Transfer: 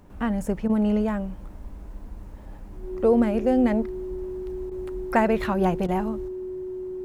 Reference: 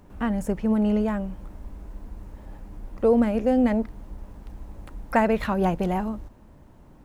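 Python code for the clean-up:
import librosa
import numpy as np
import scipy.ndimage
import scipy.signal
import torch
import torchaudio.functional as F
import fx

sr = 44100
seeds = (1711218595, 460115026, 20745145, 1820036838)

y = fx.notch(x, sr, hz=370.0, q=30.0)
y = fx.fix_interpolate(y, sr, at_s=(0.68, 4.7, 5.87), length_ms=13.0)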